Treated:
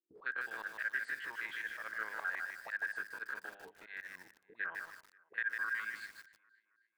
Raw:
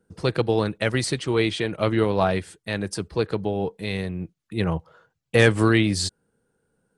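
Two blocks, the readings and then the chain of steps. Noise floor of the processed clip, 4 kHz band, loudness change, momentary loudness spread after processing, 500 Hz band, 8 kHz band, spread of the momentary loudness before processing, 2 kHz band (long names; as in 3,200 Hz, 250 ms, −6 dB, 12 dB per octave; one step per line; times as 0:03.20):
−79 dBFS, −25.0 dB, −16.0 dB, 14 LU, −34.0 dB, −25.5 dB, 11 LU, −6.5 dB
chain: spectrum averaged block by block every 50 ms
noise gate with hold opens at −43 dBFS
mains-hum notches 50/100/150/200/250/300/350/400 Hz
harmonic and percussive parts rebalanced harmonic −16 dB
envelope filter 340–1,600 Hz, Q 18, up, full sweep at −34 dBFS
parametric band 5,600 Hz −12.5 dB 0.38 octaves
in parallel at +1 dB: speech leveller within 4 dB 2 s
on the sum: volume swells 108 ms
downward compressor 4 to 1, threshold −44 dBFS, peak gain reduction 11.5 dB
dynamic equaliser 1,800 Hz, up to +5 dB, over −58 dBFS, Q 1.6
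on a send: tape delay 267 ms, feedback 53%, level −21 dB, low-pass 5,400 Hz
on the sum: feedback echo at a low word length 153 ms, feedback 35%, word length 10 bits, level −4 dB
level +5 dB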